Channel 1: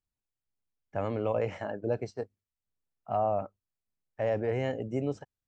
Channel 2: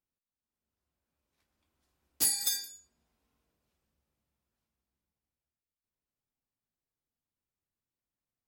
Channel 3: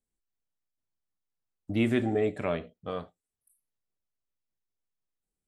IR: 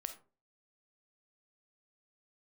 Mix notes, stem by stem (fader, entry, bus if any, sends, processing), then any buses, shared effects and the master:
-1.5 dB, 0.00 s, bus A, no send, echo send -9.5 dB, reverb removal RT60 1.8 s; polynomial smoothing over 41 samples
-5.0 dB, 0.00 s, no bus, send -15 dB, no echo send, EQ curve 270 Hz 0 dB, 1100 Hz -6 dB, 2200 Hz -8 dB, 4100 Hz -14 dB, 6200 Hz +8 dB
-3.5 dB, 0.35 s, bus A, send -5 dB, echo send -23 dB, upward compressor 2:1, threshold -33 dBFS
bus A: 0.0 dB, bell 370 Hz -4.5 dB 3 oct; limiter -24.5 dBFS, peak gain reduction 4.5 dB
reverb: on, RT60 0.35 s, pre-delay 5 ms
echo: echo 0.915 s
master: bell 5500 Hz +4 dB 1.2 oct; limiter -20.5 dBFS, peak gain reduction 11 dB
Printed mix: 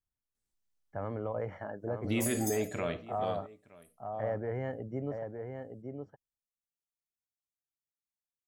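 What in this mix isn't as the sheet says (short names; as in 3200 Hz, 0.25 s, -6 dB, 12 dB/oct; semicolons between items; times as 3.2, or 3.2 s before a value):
stem 1: missing reverb removal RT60 1.8 s; stem 2 -5.0 dB -> -17.0 dB; stem 3: missing upward compressor 2:1, threshold -33 dBFS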